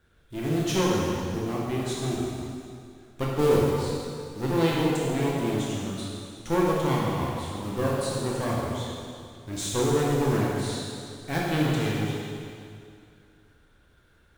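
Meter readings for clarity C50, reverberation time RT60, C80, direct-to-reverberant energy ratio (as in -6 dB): -2.0 dB, 2.3 s, -0.5 dB, -5.0 dB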